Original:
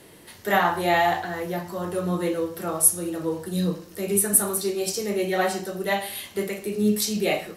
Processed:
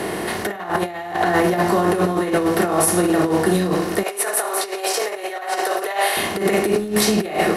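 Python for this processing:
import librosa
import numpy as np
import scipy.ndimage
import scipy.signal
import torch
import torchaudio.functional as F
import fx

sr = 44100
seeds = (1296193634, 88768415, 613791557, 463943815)

y = fx.bin_compress(x, sr, power=0.6)
y = fx.lowpass(y, sr, hz=2400.0, slope=6)
y = y + 0.32 * np.pad(y, (int(2.8 * sr / 1000.0), 0))[:len(y)]
y = fx.over_compress(y, sr, threshold_db=-25.0, ratio=-0.5)
y = fx.highpass(y, sr, hz=490.0, slope=24, at=(4.03, 6.17))
y = fx.end_taper(y, sr, db_per_s=230.0)
y = F.gain(torch.from_numpy(y), 7.0).numpy()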